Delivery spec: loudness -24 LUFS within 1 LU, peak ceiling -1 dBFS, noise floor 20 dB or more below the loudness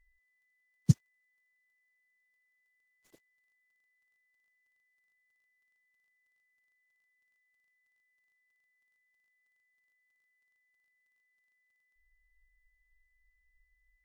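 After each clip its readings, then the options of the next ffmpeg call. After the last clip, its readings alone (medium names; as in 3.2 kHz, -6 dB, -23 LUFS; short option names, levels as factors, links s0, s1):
steady tone 2 kHz; tone level -74 dBFS; loudness -31.0 LUFS; peak level -10.0 dBFS; loudness target -24.0 LUFS
-> -af "bandreject=f=2000:w=30"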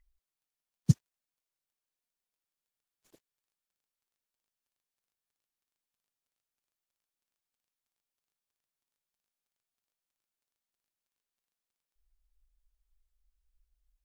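steady tone not found; loudness -31.0 LUFS; peak level -10.0 dBFS; loudness target -24.0 LUFS
-> -af "volume=2.24"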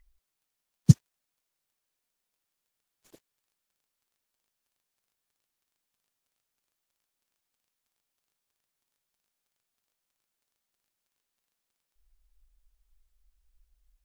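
loudness -24.0 LUFS; peak level -3.0 dBFS; noise floor -85 dBFS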